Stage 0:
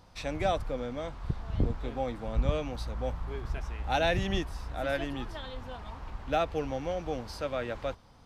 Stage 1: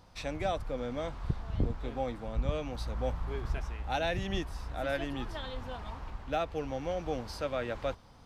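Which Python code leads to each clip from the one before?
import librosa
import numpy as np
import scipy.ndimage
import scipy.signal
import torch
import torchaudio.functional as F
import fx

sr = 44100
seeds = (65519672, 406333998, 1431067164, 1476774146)

y = fx.rider(x, sr, range_db=3, speed_s=0.5)
y = y * 10.0 ** (-2.0 / 20.0)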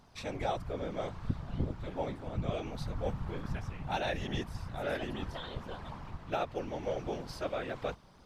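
y = fx.whisperise(x, sr, seeds[0])
y = y * 10.0 ** (-2.0 / 20.0)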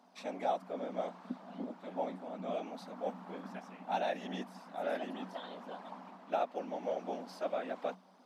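y = scipy.signal.sosfilt(scipy.signal.cheby1(6, 9, 180.0, 'highpass', fs=sr, output='sos'), x)
y = y * 10.0 ** (2.5 / 20.0)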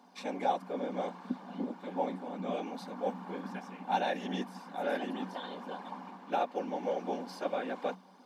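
y = fx.notch_comb(x, sr, f0_hz=650.0)
y = y * 10.0 ** (5.5 / 20.0)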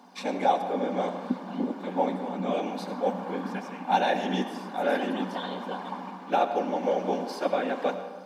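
y = fx.rev_freeverb(x, sr, rt60_s=1.4, hf_ratio=0.55, predelay_ms=45, drr_db=9.0)
y = y * 10.0 ** (7.0 / 20.0)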